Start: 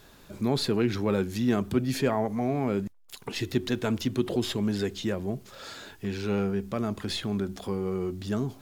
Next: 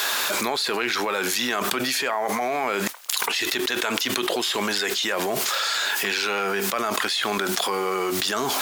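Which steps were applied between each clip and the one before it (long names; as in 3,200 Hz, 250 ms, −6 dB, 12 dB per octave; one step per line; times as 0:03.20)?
high-pass filter 1,000 Hz 12 dB per octave
envelope flattener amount 100%
level +4 dB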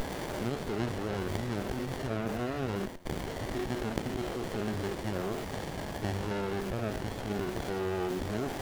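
spectrum averaged block by block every 100 ms
tuned comb filter 90 Hz, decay 0.97 s, harmonics all, mix 50%
windowed peak hold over 33 samples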